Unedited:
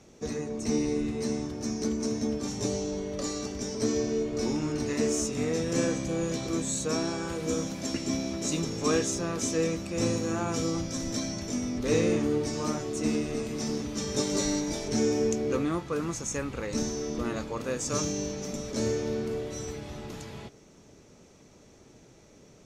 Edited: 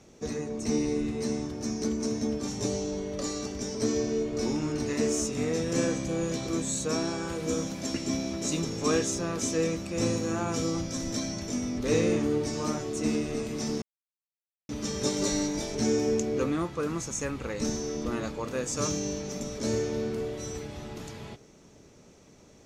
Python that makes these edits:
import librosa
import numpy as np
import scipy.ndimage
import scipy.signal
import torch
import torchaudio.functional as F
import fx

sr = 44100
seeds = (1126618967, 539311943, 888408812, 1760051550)

y = fx.edit(x, sr, fx.insert_silence(at_s=13.82, length_s=0.87), tone=tone)